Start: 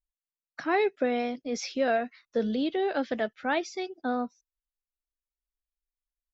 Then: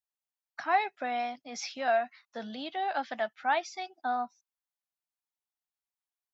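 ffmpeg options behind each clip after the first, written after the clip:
-af "highpass=100,lowshelf=f=590:t=q:w=3:g=-8.5,volume=0.794"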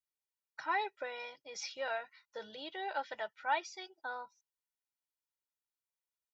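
-af "aecho=1:1:2.1:0.9,volume=0.447"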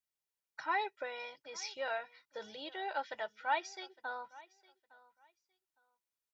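-af "aecho=1:1:860|1720:0.0841|0.0168"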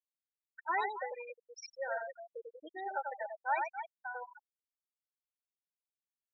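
-af "aecho=1:1:93.29|274.1:0.631|0.355,afftfilt=real='re*gte(hypot(re,im),0.0398)':imag='im*gte(hypot(re,im),0.0398)':win_size=1024:overlap=0.75"

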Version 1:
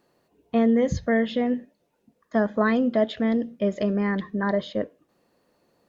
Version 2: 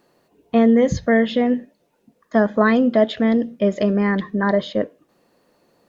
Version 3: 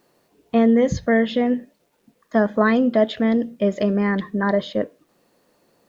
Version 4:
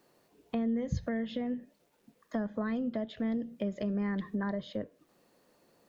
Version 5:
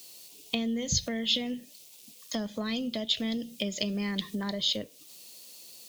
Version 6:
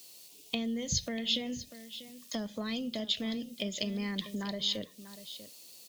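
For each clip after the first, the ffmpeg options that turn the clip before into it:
-af "equalizer=f=67:w=1.1:g=-5,volume=2"
-af "acrusher=bits=10:mix=0:aa=0.000001,volume=0.841"
-filter_complex "[0:a]acrossover=split=160[s0][s1];[s1]acompressor=threshold=0.0355:ratio=10[s2];[s0][s2]amix=inputs=2:normalize=0,volume=0.562"
-af "aexciter=amount=8.9:drive=8.6:freq=2500"
-af "aecho=1:1:642:0.2,volume=0.668"

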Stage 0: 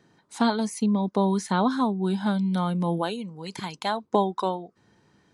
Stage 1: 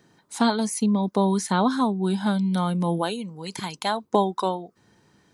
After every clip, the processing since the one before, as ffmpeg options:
-af "highshelf=f=7900:g=10,volume=1.19"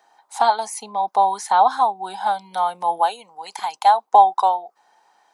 -af "highpass=f=790:t=q:w=7.2,volume=0.891"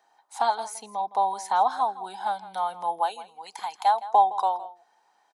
-filter_complex "[0:a]asplit=2[s0][s1];[s1]adelay=163.3,volume=0.158,highshelf=f=4000:g=-3.67[s2];[s0][s2]amix=inputs=2:normalize=0,volume=0.447"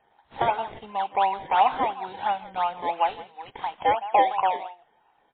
-filter_complex "[0:a]asplit=2[s0][s1];[s1]acrusher=samples=23:mix=1:aa=0.000001:lfo=1:lforange=23:lforate=2.9,volume=0.562[s2];[s0][s2]amix=inputs=2:normalize=0,asoftclip=type=tanh:threshold=0.473" -ar 8000 -c:a libmp3lame -b:a 16k

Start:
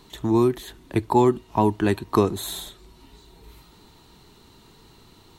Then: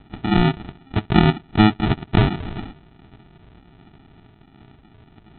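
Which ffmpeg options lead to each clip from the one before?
-af "aemphasis=mode=production:type=bsi,aphaser=in_gain=1:out_gain=1:delay=1.9:decay=0.23:speed=1.3:type=triangular,aresample=8000,acrusher=samples=15:mix=1:aa=0.000001,aresample=44100,volume=2.11"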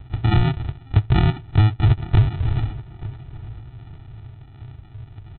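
-filter_complex "[0:a]lowshelf=f=150:t=q:w=3:g=9.5,acompressor=threshold=0.251:ratio=6,asplit=2[s0][s1];[s1]adelay=879,lowpass=f=2300:p=1,volume=0.141,asplit=2[s2][s3];[s3]adelay=879,lowpass=f=2300:p=1,volume=0.28,asplit=2[s4][s5];[s5]adelay=879,lowpass=f=2300:p=1,volume=0.28[s6];[s0][s2][s4][s6]amix=inputs=4:normalize=0"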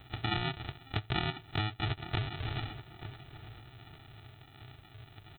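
-af "aemphasis=mode=production:type=riaa,bandreject=f=960:w=11,acompressor=threshold=0.0282:ratio=2,volume=0.794"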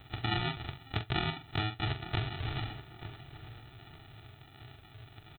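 -filter_complex "[0:a]asplit=2[s0][s1];[s1]adelay=44,volume=0.355[s2];[s0][s2]amix=inputs=2:normalize=0"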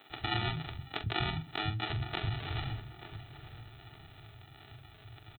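-filter_complex "[0:a]acrossover=split=240[s0][s1];[s0]adelay=100[s2];[s2][s1]amix=inputs=2:normalize=0"

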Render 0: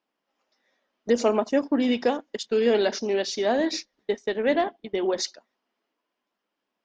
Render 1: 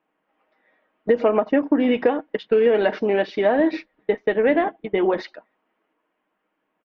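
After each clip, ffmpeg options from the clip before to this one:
-af "lowpass=f=2500:w=0.5412,lowpass=f=2500:w=1.3066,aecho=1:1:6.4:0.38,acompressor=threshold=0.0794:ratio=6,volume=2.51"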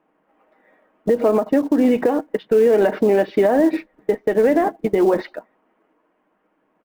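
-filter_complex "[0:a]lowpass=f=1000:p=1,asplit=2[s0][s1];[s1]acrusher=bits=5:mode=log:mix=0:aa=0.000001,volume=0.562[s2];[s0][s2]amix=inputs=2:normalize=0,alimiter=limit=0.178:level=0:latency=1:release=233,volume=2.24"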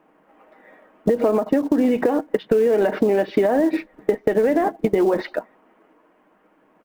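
-af "acompressor=threshold=0.0708:ratio=6,volume=2.37"

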